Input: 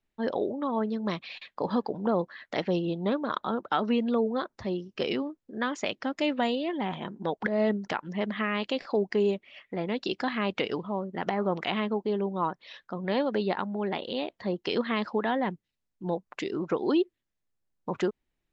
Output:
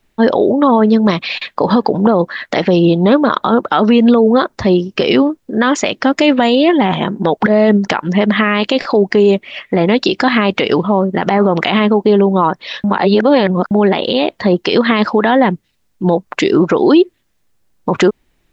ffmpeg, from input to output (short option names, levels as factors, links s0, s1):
-filter_complex "[0:a]asplit=3[s0][s1][s2];[s0]atrim=end=12.842[s3];[s1]atrim=start=12.838:end=13.712,asetpts=PTS-STARTPTS,areverse[s4];[s2]atrim=start=13.708[s5];[s3][s4]acrossfade=d=0.004:c1=hsin:c2=hsin[s6];[s6][s5]acrossfade=d=0.004:c1=hsin:c2=hsin,alimiter=level_in=12.6:limit=0.891:release=50:level=0:latency=1,volume=0.891"